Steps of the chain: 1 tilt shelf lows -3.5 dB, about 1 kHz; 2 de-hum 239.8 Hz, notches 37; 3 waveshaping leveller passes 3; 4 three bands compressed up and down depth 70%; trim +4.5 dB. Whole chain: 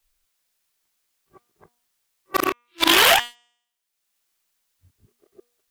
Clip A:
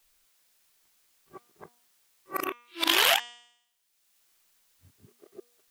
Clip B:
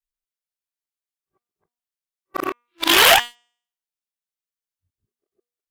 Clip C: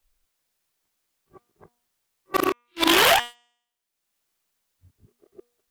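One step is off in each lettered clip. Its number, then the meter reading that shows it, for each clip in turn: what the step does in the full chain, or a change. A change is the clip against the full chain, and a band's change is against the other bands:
3, crest factor change +4.0 dB; 4, crest factor change -4.5 dB; 1, momentary loudness spread change -2 LU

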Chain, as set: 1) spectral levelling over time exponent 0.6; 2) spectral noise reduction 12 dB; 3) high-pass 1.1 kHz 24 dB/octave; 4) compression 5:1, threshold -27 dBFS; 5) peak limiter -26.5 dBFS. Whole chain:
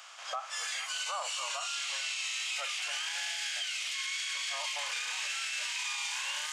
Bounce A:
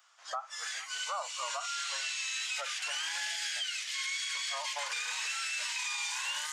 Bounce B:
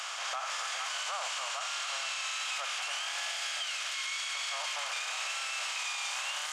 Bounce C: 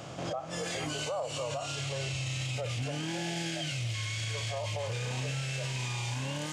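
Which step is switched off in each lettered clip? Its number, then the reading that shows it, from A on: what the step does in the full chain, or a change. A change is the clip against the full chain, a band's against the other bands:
1, momentary loudness spread change +2 LU; 2, 1 kHz band +3.5 dB; 3, 500 Hz band +17.5 dB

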